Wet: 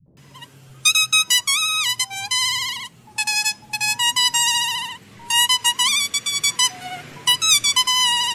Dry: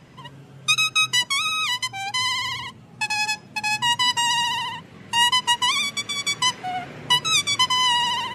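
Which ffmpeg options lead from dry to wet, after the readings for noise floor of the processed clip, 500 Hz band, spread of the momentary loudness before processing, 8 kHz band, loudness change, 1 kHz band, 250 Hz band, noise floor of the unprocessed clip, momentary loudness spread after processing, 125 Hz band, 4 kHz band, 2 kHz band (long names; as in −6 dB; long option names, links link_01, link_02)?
−49 dBFS, can't be measured, 11 LU, +8.5 dB, +3.5 dB, −2.5 dB, −4.0 dB, −46 dBFS, 10 LU, −3.5 dB, +3.0 dB, +1.0 dB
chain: -filter_complex "[0:a]acontrast=28,acrossover=split=180|600[link_01][link_02][link_03];[link_02]adelay=60[link_04];[link_03]adelay=170[link_05];[link_01][link_04][link_05]amix=inputs=3:normalize=0,crystalizer=i=3:c=0,volume=-7dB"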